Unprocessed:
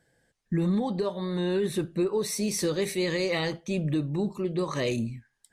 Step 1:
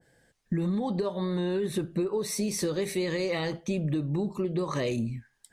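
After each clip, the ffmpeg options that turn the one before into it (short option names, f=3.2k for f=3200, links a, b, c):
-af "acompressor=threshold=-30dB:ratio=6,adynamicequalizer=threshold=0.00224:dfrequency=1600:dqfactor=0.7:tfrequency=1600:tqfactor=0.7:attack=5:release=100:ratio=0.375:range=1.5:mode=cutabove:tftype=highshelf,volume=4.5dB"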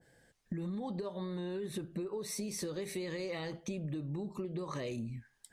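-af "acompressor=threshold=-37dB:ratio=3,volume=-1.5dB"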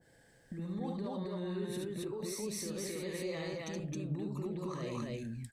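-filter_complex "[0:a]alimiter=level_in=10dB:limit=-24dB:level=0:latency=1:release=283,volume=-10dB,asplit=2[a][b];[b]aecho=0:1:72.89|268.2:0.708|1[c];[a][c]amix=inputs=2:normalize=0"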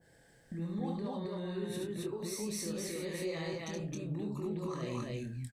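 -filter_complex "[0:a]asplit=2[a][b];[b]adelay=24,volume=-6dB[c];[a][c]amix=inputs=2:normalize=0"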